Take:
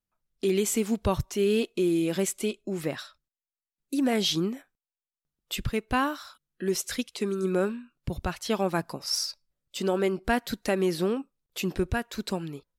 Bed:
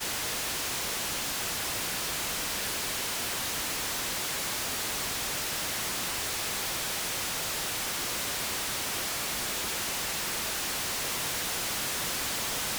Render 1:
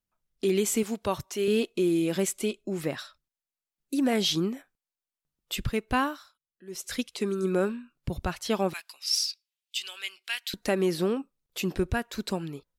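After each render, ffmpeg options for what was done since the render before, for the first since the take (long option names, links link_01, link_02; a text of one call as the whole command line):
ffmpeg -i in.wav -filter_complex "[0:a]asettb=1/sr,asplit=3[link_01][link_02][link_03];[link_01]atrim=end=0.834[link_04];[link_02]atrim=start=0.83:end=1.48,asetpts=PTS-STARTPTS,afade=type=in:duration=0.004:curve=qsin,afade=type=out:start_time=0.646:duration=0.004:curve=qsin,highpass=frequency=370:poles=1[link_05];[link_03]atrim=start=1.476[link_06];[link_04][link_05]acrossfade=duration=0.004:curve1=hsin:curve2=qsin[link_07];[link_07][link_06]acrossfade=duration=0.004:curve1=qsin:curve2=hsin,asettb=1/sr,asplit=3[link_08][link_09][link_10];[link_08]atrim=end=8.734[link_11];[link_09]atrim=start=8.73:end=10.54,asetpts=PTS-STARTPTS,afade=type=in:duration=0.004:curve=qsin,afade=type=out:start_time=1.806:duration=0.004:curve=qsin,highpass=frequency=2800:width_type=q:width=2.4[link_12];[link_10]atrim=start=10.536[link_13];[link_11][link_12]acrossfade=duration=0.004:curve1=hsin:curve2=qsin[link_14];[link_14][link_13]acrossfade=duration=0.004:curve1=qsin:curve2=hsin,asplit=3[link_15][link_16][link_17];[link_15]atrim=end=6.32,asetpts=PTS-STARTPTS,afade=type=out:start_time=6:duration=0.32:silence=0.112202[link_18];[link_16]atrim=start=6.32:end=6.67,asetpts=PTS-STARTPTS,volume=-19dB[link_19];[link_17]atrim=start=6.67,asetpts=PTS-STARTPTS,afade=type=in:duration=0.32:silence=0.112202[link_20];[link_18][link_19][link_20]concat=n=3:v=0:a=1" out.wav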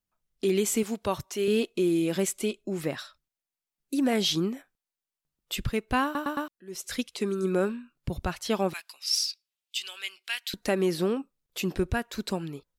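ffmpeg -i in.wav -filter_complex "[0:a]asplit=5[link_01][link_02][link_03][link_04][link_05];[link_01]atrim=end=6.152[link_06];[link_02]atrim=start=6.038:end=6.152[link_07];[link_03]atrim=start=6.038:end=6.152[link_08];[link_04]atrim=start=6.038:end=6.152[link_09];[link_05]atrim=start=6.478[link_10];[link_06][link_07]acrossfade=duration=0.004:curve1=hsin:curve2=hsin[link_11];[link_11][link_08]acrossfade=duration=0.004:curve1=hsin:curve2=hsin[link_12];[link_12][link_09]acrossfade=duration=0.004:curve1=hsin:curve2=hsin[link_13];[link_13][link_10]acrossfade=duration=0.004:curve1=hsin:curve2=hsin" out.wav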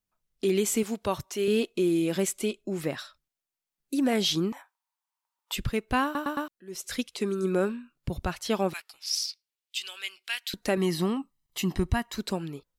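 ffmpeg -i in.wav -filter_complex "[0:a]asettb=1/sr,asplit=3[link_01][link_02][link_03];[link_01]atrim=end=4.524[link_04];[link_02]atrim=start=4.52:end=5.53,asetpts=PTS-STARTPTS,afade=type=in:duration=0.004:curve=qsin,afade=type=out:start_time=1.006:duration=0.004:curve=qsin,highpass=frequency=930:width_type=q:width=7.3[link_05];[link_03]atrim=start=5.526[link_06];[link_04][link_05]acrossfade=duration=0.004:curve1=hsin:curve2=qsin[link_07];[link_07][link_06]acrossfade=duration=0.004:curve1=qsin:curve2=hsin,asettb=1/sr,asplit=3[link_08][link_09][link_10];[link_08]atrim=end=8.804[link_11];[link_09]atrim=start=8.8:end=9.77,asetpts=PTS-STARTPTS,afade=type=in:duration=0.004:curve=qsin,afade=type=out:start_time=0.966:duration=0.004:curve=qsin,aeval=exprs='val(0)*sin(2*PI*240*n/s)':channel_layout=same[link_12];[link_10]atrim=start=9.766[link_13];[link_11][link_12]acrossfade=duration=0.004:curve1=hsin:curve2=qsin[link_14];[link_14][link_13]acrossfade=duration=0.004:curve1=qsin:curve2=hsin,asettb=1/sr,asplit=3[link_15][link_16][link_17];[link_15]atrim=end=10.774[link_18];[link_16]atrim=start=10.77:end=12.16,asetpts=PTS-STARTPTS,afade=type=in:duration=0.004:curve=qsin,afade=type=out:start_time=1.386:duration=0.004:curve=qsin,aecho=1:1:1:0.67,atrim=end_sample=61299[link_19];[link_17]atrim=start=12.156[link_20];[link_18][link_19]acrossfade=duration=0.004:curve1=hsin:curve2=qsin[link_21];[link_21][link_20]acrossfade=duration=0.004:curve1=qsin:curve2=hsin" out.wav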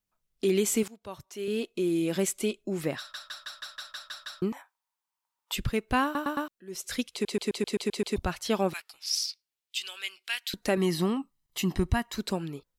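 ffmpeg -i in.wav -filter_complex "[0:a]asplit=19[link_01][link_02][link_03][link_04][link_05][link_06][link_07][link_08][link_09][link_10][link_11][link_12][link_13][link_14][link_15][link_16][link_17][link_18][link_19];[link_01]atrim=end=0.88,asetpts=PTS-STARTPTS,afade=type=out:start_time=0.876:duration=0.004:curve=hsin:silence=0.0944061[link_20];[link_02]atrim=start=0.88:end=3.142,asetpts=PTS-STARTPTS,afade=type=in:duration=1.42:silence=0.0944061[link_21];[link_03]atrim=start=2.978:end=3.142[link_22];[link_04]atrim=start=2.978:end=3.142[link_23];[link_05]atrim=start=2.978:end=3.142[link_24];[link_06]atrim=start=2.978:end=3.142[link_25];[link_07]atrim=start=2.978:end=3.142[link_26];[link_08]atrim=start=2.978:end=3.142[link_27];[link_09]atrim=start=2.978:end=3.142[link_28];[link_10]atrim=start=2.978:end=3.142[link_29];[link_11]atrim=start=4.418:end=7.252[link_30];[link_12]atrim=start=7.118:end=7.252[link_31];[link_13]atrim=start=7.118:end=7.252[link_32];[link_14]atrim=start=7.118:end=7.252[link_33];[link_15]atrim=start=7.118:end=7.252[link_34];[link_16]atrim=start=7.118:end=7.252[link_35];[link_17]atrim=start=7.118:end=7.252[link_36];[link_18]atrim=start=7.118:end=7.252[link_37];[link_19]atrim=start=8.158[link_38];[link_20][link_21]concat=n=2:v=0:a=1[link_39];[link_39][link_22]acrossfade=duration=0.004:curve1=hsin:curve2=hsin[link_40];[link_40][link_23]acrossfade=duration=0.004:curve1=hsin:curve2=hsin[link_41];[link_41][link_24]acrossfade=duration=0.004:curve1=hsin:curve2=hsin[link_42];[link_42][link_25]acrossfade=duration=0.004:curve1=hsin:curve2=hsin[link_43];[link_43][link_26]acrossfade=duration=0.004:curve1=hsin:curve2=hsin[link_44];[link_44][link_27]acrossfade=duration=0.004:curve1=hsin:curve2=hsin[link_45];[link_45][link_28]acrossfade=duration=0.004:curve1=hsin:curve2=hsin[link_46];[link_46][link_29]acrossfade=duration=0.004:curve1=hsin:curve2=hsin[link_47];[link_47][link_30]acrossfade=duration=0.004:curve1=hsin:curve2=hsin[link_48];[link_48][link_31]acrossfade=duration=0.004:curve1=hsin:curve2=hsin[link_49];[link_49][link_32]acrossfade=duration=0.004:curve1=hsin:curve2=hsin[link_50];[link_50][link_33]acrossfade=duration=0.004:curve1=hsin:curve2=hsin[link_51];[link_51][link_34]acrossfade=duration=0.004:curve1=hsin:curve2=hsin[link_52];[link_52][link_35]acrossfade=duration=0.004:curve1=hsin:curve2=hsin[link_53];[link_53][link_36]acrossfade=duration=0.004:curve1=hsin:curve2=hsin[link_54];[link_54][link_37]acrossfade=duration=0.004:curve1=hsin:curve2=hsin[link_55];[link_55][link_38]acrossfade=duration=0.004:curve1=hsin:curve2=hsin" out.wav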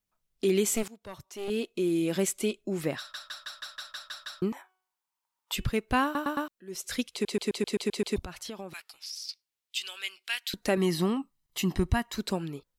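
ffmpeg -i in.wav -filter_complex "[0:a]asettb=1/sr,asplit=3[link_01][link_02][link_03];[link_01]atrim=end=0.754[link_04];[link_02]atrim=start=0.75:end=1.5,asetpts=PTS-STARTPTS,afade=type=in:duration=0.004:curve=qsin,afade=type=out:start_time=0.746:duration=0.004:curve=qsin,aeval=exprs='clip(val(0),-1,0.0133)':channel_layout=same[link_05];[link_03]atrim=start=1.496[link_06];[link_04][link_05]acrossfade=duration=0.004:curve1=hsin:curve2=qsin[link_07];[link_07][link_06]acrossfade=duration=0.004:curve1=qsin:curve2=hsin,asettb=1/sr,asplit=3[link_08][link_09][link_10];[link_08]atrim=end=4.514[link_11];[link_09]atrim=start=4.51:end=5.65,asetpts=PTS-STARTPTS,afade=type=in:duration=0.004:curve=qsin,afade=type=out:start_time=1.136:duration=0.004:curve=qsin,bandreject=frequency=372.4:width_type=h:width=4,bandreject=frequency=744.8:width_type=h:width=4,bandreject=frequency=1117.2:width_type=h:width=4,bandreject=frequency=1489.6:width_type=h:width=4,bandreject=frequency=1862:width_type=h:width=4,bandreject=frequency=2234.4:width_type=h:width=4,bandreject=frequency=2606.8:width_type=h:width=4,bandreject=frequency=2979.2:width_type=h:width=4,bandreject=frequency=3351.6:width_type=h:width=4[link_12];[link_10]atrim=start=5.646[link_13];[link_11][link_12]acrossfade=duration=0.004:curve1=hsin:curve2=qsin[link_14];[link_14][link_13]acrossfade=duration=0.004:curve1=qsin:curve2=hsin,asettb=1/sr,asplit=3[link_15][link_16][link_17];[link_15]atrim=end=8.234[link_18];[link_16]atrim=start=8.23:end=9.29,asetpts=PTS-STARTPTS,afade=type=in:duration=0.004:curve=qsin,afade=type=out:start_time=1.056:duration=0.004:curve=qsin,acompressor=threshold=-36dB:ratio=6:attack=3.2:release=140:knee=1:detection=peak[link_19];[link_17]atrim=start=9.286[link_20];[link_18][link_19]acrossfade=duration=0.004:curve1=hsin:curve2=qsin[link_21];[link_21][link_20]acrossfade=duration=0.004:curve1=qsin:curve2=hsin" out.wav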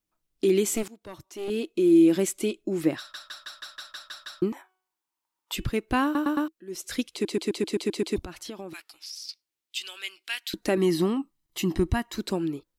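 ffmpeg -i in.wav -af "equalizer=frequency=320:width=4.6:gain=13" out.wav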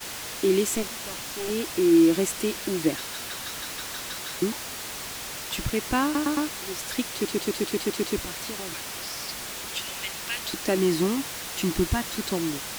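ffmpeg -i in.wav -i bed.wav -filter_complex "[1:a]volume=-3.5dB[link_01];[0:a][link_01]amix=inputs=2:normalize=0" out.wav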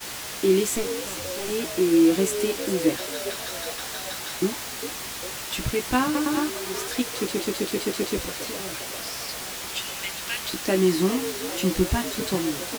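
ffmpeg -i in.wav -filter_complex "[0:a]asplit=2[link_01][link_02];[link_02]adelay=16,volume=-5.5dB[link_03];[link_01][link_03]amix=inputs=2:normalize=0,asplit=7[link_04][link_05][link_06][link_07][link_08][link_09][link_10];[link_05]adelay=403,afreqshift=85,volume=-12dB[link_11];[link_06]adelay=806,afreqshift=170,volume=-16.7dB[link_12];[link_07]adelay=1209,afreqshift=255,volume=-21.5dB[link_13];[link_08]adelay=1612,afreqshift=340,volume=-26.2dB[link_14];[link_09]adelay=2015,afreqshift=425,volume=-30.9dB[link_15];[link_10]adelay=2418,afreqshift=510,volume=-35.7dB[link_16];[link_04][link_11][link_12][link_13][link_14][link_15][link_16]amix=inputs=7:normalize=0" out.wav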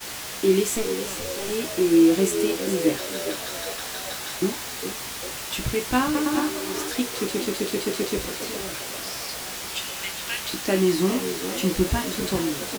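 ffmpeg -i in.wav -filter_complex "[0:a]asplit=2[link_01][link_02];[link_02]adelay=36,volume=-11dB[link_03];[link_01][link_03]amix=inputs=2:normalize=0,aecho=1:1:428:0.224" out.wav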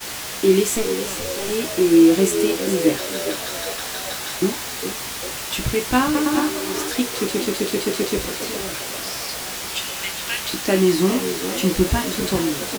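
ffmpeg -i in.wav -af "volume=4dB" out.wav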